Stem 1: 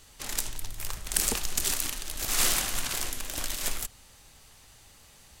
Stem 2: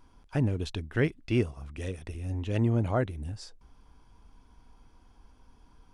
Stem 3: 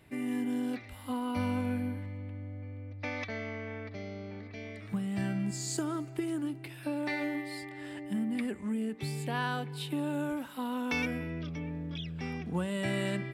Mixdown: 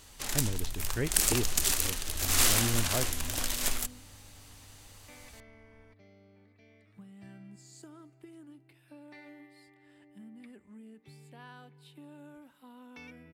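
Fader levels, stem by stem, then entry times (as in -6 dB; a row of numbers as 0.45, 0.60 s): +0.5, -6.5, -17.5 dB; 0.00, 0.00, 2.05 s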